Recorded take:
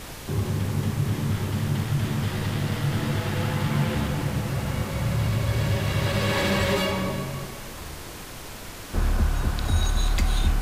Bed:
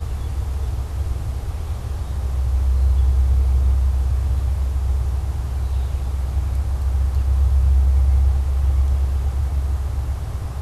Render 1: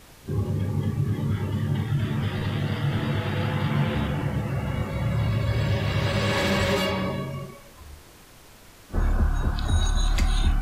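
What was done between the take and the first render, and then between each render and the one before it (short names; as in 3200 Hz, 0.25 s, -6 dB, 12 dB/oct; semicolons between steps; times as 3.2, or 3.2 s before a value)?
noise print and reduce 11 dB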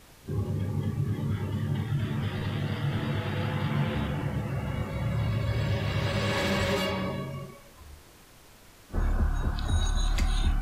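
gain -4 dB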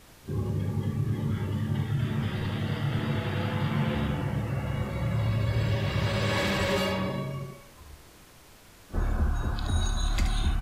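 echo 73 ms -7.5 dB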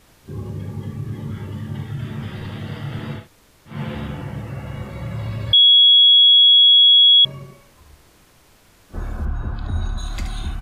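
3.2–3.73 room tone, crossfade 0.16 s; 5.53–7.25 bleep 3340 Hz -7.5 dBFS; 9.25–9.98 tone controls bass +4 dB, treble -14 dB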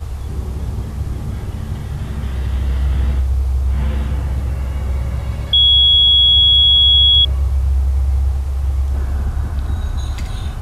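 add bed 0 dB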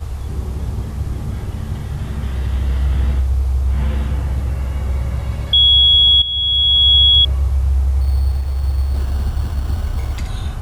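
6.22–6.92 fade in, from -13.5 dB; 8.01–10.18 sample-rate reducer 4400 Hz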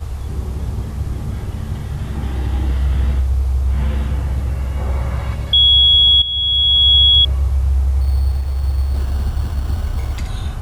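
2.15–2.72 small resonant body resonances 310/820 Hz, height 10 dB; 4.77–5.33 bell 620 Hz -> 1600 Hz +6.5 dB 2.2 oct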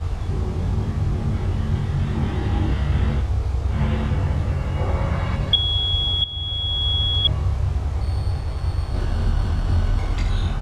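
air absorption 75 m; doubler 22 ms -2 dB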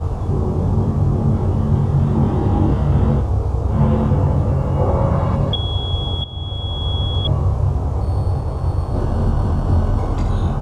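ten-band EQ 125 Hz +7 dB, 250 Hz +6 dB, 500 Hz +8 dB, 1000 Hz +8 dB, 2000 Hz -9 dB, 4000 Hz -5 dB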